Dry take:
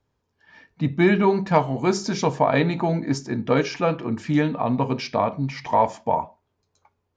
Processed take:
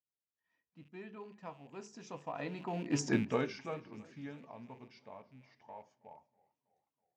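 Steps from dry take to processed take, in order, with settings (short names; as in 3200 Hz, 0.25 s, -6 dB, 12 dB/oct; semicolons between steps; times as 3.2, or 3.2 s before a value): rattling part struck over -31 dBFS, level -29 dBFS; Doppler pass-by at 3.09, 19 m/s, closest 1.1 m; low shelf 84 Hz -10 dB; notch 4200 Hz, Q 15; warbling echo 0.326 s, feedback 55%, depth 105 cents, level -24 dB; gain +1 dB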